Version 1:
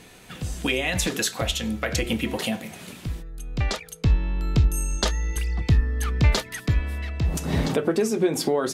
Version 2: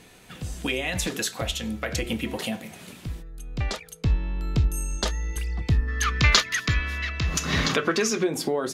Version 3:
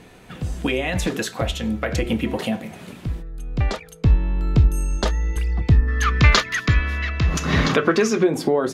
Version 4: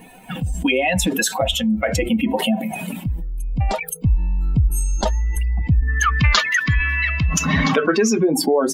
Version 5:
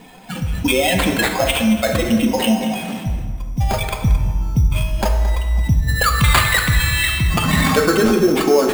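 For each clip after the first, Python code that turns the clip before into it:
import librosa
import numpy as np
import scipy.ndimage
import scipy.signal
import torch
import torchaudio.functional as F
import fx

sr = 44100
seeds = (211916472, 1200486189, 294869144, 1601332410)

y1 = fx.spec_box(x, sr, start_s=5.88, length_s=2.36, low_hz=1000.0, high_hz=7200.0, gain_db=12)
y1 = y1 * librosa.db_to_amplitude(-3.0)
y2 = fx.high_shelf(y1, sr, hz=2600.0, db=-11.0)
y2 = y2 * librosa.db_to_amplitude(7.0)
y3 = fx.bin_expand(y2, sr, power=2.0)
y3 = fx.env_flatten(y3, sr, amount_pct=70)
y3 = y3 * librosa.db_to_amplitude(-1.5)
y4 = fx.sample_hold(y3, sr, seeds[0], rate_hz=5800.0, jitter_pct=0)
y4 = y4 + 10.0 ** (-14.0 / 20.0) * np.pad(y4, (int(221 * sr / 1000.0), 0))[:len(y4)]
y4 = fx.rev_plate(y4, sr, seeds[1], rt60_s=1.8, hf_ratio=0.55, predelay_ms=0, drr_db=4.0)
y4 = y4 * librosa.db_to_amplitude(1.0)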